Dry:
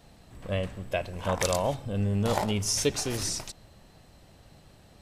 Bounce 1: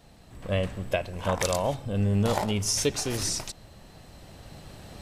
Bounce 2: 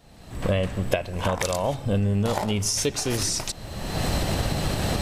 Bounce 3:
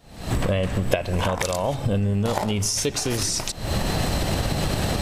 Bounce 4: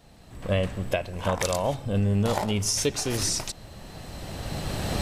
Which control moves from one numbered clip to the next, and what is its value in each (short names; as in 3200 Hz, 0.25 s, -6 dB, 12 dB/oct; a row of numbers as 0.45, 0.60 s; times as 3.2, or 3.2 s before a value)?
recorder AGC, rising by: 5.2, 36, 89, 14 dB/s